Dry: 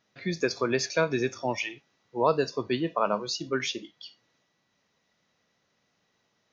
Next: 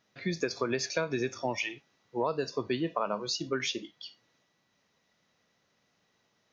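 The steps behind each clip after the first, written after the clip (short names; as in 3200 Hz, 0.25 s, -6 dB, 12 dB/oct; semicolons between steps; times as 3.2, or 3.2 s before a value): compressor 6:1, threshold -26 dBFS, peak gain reduction 9 dB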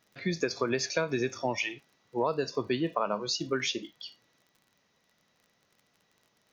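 crackle 34/s -51 dBFS; gain +1.5 dB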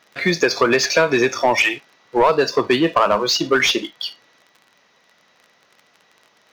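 overdrive pedal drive 19 dB, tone 3000 Hz, clips at -12 dBFS; in parallel at -3.5 dB: crossover distortion -42.5 dBFS; on the sum: gain +4 dB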